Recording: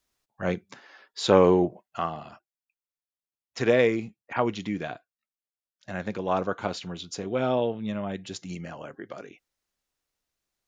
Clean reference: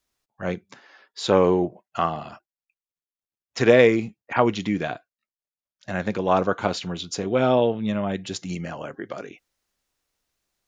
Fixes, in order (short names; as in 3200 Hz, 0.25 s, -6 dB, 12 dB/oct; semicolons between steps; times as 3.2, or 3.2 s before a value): gain correction +6 dB, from 1.95